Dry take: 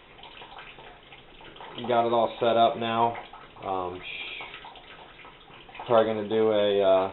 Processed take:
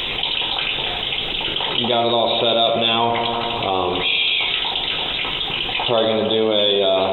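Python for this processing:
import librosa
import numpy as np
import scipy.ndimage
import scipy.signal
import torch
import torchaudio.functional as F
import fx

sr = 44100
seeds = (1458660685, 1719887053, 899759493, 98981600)

y = fx.high_shelf_res(x, sr, hz=2400.0, db=12.0, q=1.5)
y = fx.echo_bbd(y, sr, ms=85, stages=1024, feedback_pct=74, wet_db=-11.5)
y = fx.env_flatten(y, sr, amount_pct=70)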